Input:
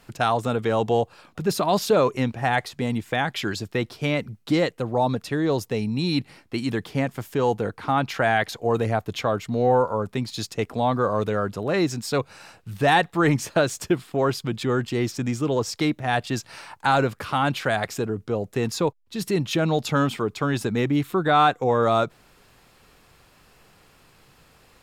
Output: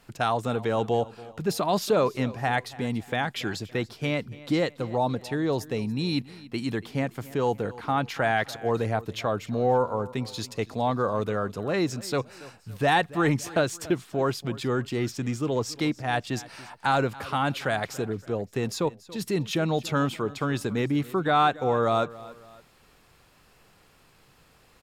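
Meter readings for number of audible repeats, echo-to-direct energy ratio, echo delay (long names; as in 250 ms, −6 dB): 2, −18.5 dB, 283 ms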